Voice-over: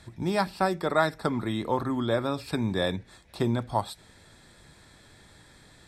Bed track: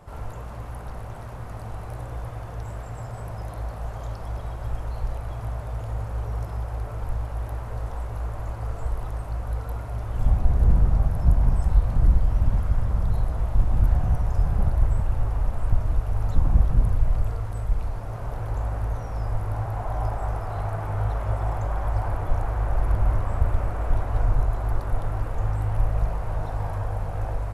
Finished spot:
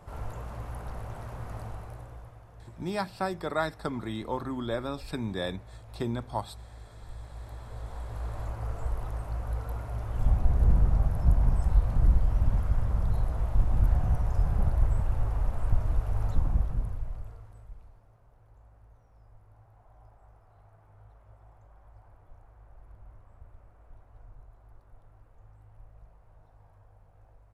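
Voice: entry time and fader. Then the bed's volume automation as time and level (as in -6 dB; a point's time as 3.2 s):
2.60 s, -5.5 dB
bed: 1.6 s -3 dB
2.44 s -17 dB
6.92 s -17 dB
8.39 s -4 dB
16.25 s -4 dB
18.26 s -29.5 dB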